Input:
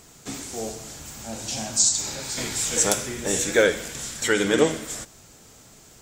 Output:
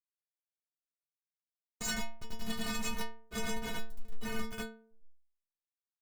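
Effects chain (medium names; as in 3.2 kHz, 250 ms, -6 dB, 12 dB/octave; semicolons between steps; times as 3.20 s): de-hum 46.81 Hz, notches 21; spectral selection erased 0.91–1.86 s, 1.6–6 kHz; frequency weighting D; chorus voices 6, 0.99 Hz, delay 26 ms, depth 3 ms; compression 2:1, threshold -24 dBFS, peak gain reduction 6.5 dB; echo whose repeats swap between lows and highs 109 ms, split 880 Hz, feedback 62%, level -12 dB; Schmitt trigger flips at -18.5 dBFS; granulator 169 ms, grains 10 per s, pitch spread up and down by 0 st; sine folder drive 9 dB, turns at -20.5 dBFS; inharmonic resonator 220 Hz, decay 0.48 s, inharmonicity 0.008; dynamic bell 440 Hz, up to -7 dB, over -56 dBFS, Q 0.91; trim +5 dB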